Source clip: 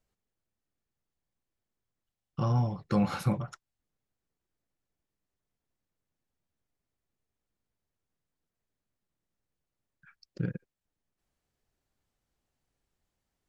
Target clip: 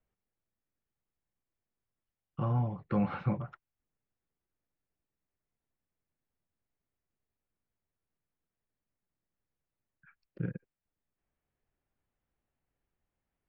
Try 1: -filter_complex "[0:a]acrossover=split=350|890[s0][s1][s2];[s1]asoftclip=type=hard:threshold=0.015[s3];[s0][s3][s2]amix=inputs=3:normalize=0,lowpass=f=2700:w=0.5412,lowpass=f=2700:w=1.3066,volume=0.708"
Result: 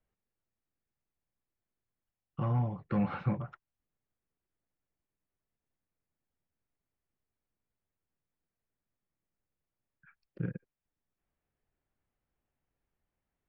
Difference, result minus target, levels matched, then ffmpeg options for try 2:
hard clipper: distortion +27 dB
-filter_complex "[0:a]acrossover=split=350|890[s0][s1][s2];[s1]asoftclip=type=hard:threshold=0.0501[s3];[s0][s3][s2]amix=inputs=3:normalize=0,lowpass=f=2700:w=0.5412,lowpass=f=2700:w=1.3066,volume=0.708"

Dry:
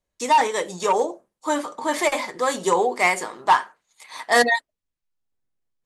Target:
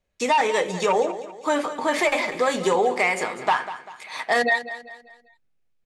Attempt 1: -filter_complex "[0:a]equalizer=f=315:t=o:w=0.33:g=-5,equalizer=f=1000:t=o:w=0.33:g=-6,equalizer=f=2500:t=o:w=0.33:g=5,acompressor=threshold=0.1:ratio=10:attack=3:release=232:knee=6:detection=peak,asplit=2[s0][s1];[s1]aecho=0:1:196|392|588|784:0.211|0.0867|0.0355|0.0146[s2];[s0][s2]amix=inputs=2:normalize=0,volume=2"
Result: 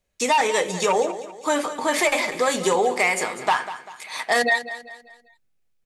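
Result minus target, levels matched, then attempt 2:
8 kHz band +6.5 dB
-filter_complex "[0:a]equalizer=f=315:t=o:w=0.33:g=-5,equalizer=f=1000:t=o:w=0.33:g=-6,equalizer=f=2500:t=o:w=0.33:g=5,acompressor=threshold=0.1:ratio=10:attack=3:release=232:knee=6:detection=peak,highshelf=f=6100:g=-12,asplit=2[s0][s1];[s1]aecho=0:1:196|392|588|784:0.211|0.0867|0.0355|0.0146[s2];[s0][s2]amix=inputs=2:normalize=0,volume=2"

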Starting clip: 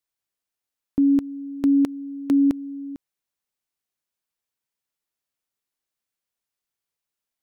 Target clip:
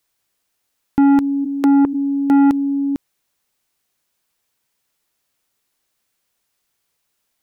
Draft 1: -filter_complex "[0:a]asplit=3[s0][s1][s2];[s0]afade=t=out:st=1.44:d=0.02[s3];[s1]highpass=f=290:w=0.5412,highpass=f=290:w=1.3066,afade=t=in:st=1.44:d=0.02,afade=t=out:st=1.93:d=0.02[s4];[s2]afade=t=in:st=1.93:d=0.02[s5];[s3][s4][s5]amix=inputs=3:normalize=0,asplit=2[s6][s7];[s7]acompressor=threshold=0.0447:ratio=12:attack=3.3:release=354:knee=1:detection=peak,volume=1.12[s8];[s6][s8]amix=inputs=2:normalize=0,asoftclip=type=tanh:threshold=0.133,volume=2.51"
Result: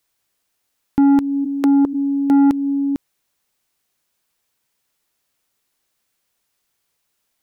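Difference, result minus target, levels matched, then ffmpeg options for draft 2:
compression: peak gain reduction +8.5 dB
-filter_complex "[0:a]asplit=3[s0][s1][s2];[s0]afade=t=out:st=1.44:d=0.02[s3];[s1]highpass=f=290:w=0.5412,highpass=f=290:w=1.3066,afade=t=in:st=1.44:d=0.02,afade=t=out:st=1.93:d=0.02[s4];[s2]afade=t=in:st=1.93:d=0.02[s5];[s3][s4][s5]amix=inputs=3:normalize=0,asplit=2[s6][s7];[s7]acompressor=threshold=0.133:ratio=12:attack=3.3:release=354:knee=1:detection=peak,volume=1.12[s8];[s6][s8]amix=inputs=2:normalize=0,asoftclip=type=tanh:threshold=0.133,volume=2.51"

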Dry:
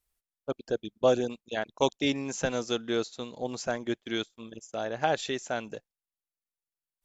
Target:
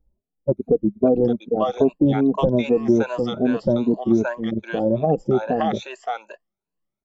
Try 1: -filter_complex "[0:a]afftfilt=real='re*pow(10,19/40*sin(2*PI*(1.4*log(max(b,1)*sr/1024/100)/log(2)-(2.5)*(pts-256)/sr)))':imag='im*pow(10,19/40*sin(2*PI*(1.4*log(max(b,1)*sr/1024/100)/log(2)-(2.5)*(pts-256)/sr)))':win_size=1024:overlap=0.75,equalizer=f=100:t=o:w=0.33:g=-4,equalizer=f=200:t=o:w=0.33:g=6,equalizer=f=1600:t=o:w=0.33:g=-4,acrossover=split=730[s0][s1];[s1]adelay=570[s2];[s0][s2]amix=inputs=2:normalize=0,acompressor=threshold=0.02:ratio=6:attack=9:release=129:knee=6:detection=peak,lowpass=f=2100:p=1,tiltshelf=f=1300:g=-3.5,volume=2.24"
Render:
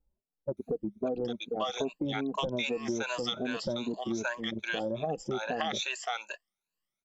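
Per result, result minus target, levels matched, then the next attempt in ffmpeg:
compression: peak gain reduction +6.5 dB; 1 kHz band +3.0 dB
-filter_complex "[0:a]afftfilt=real='re*pow(10,19/40*sin(2*PI*(1.4*log(max(b,1)*sr/1024/100)/log(2)-(2.5)*(pts-256)/sr)))':imag='im*pow(10,19/40*sin(2*PI*(1.4*log(max(b,1)*sr/1024/100)/log(2)-(2.5)*(pts-256)/sr)))':win_size=1024:overlap=0.75,equalizer=f=100:t=o:w=0.33:g=-4,equalizer=f=200:t=o:w=0.33:g=6,equalizer=f=1600:t=o:w=0.33:g=-4,acrossover=split=730[s0][s1];[s1]adelay=570[s2];[s0][s2]amix=inputs=2:normalize=0,acompressor=threshold=0.0501:ratio=6:attack=9:release=129:knee=6:detection=peak,lowpass=f=2100:p=1,tiltshelf=f=1300:g=-3.5,volume=2.24"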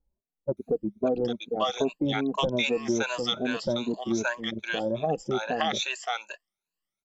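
1 kHz band +3.0 dB
-filter_complex "[0:a]afftfilt=real='re*pow(10,19/40*sin(2*PI*(1.4*log(max(b,1)*sr/1024/100)/log(2)-(2.5)*(pts-256)/sr)))':imag='im*pow(10,19/40*sin(2*PI*(1.4*log(max(b,1)*sr/1024/100)/log(2)-(2.5)*(pts-256)/sr)))':win_size=1024:overlap=0.75,equalizer=f=100:t=o:w=0.33:g=-4,equalizer=f=200:t=o:w=0.33:g=6,equalizer=f=1600:t=o:w=0.33:g=-4,acrossover=split=730[s0][s1];[s1]adelay=570[s2];[s0][s2]amix=inputs=2:normalize=0,acompressor=threshold=0.0501:ratio=6:attack=9:release=129:knee=6:detection=peak,lowpass=f=2100:p=1,tiltshelf=f=1300:g=8,volume=2.24"

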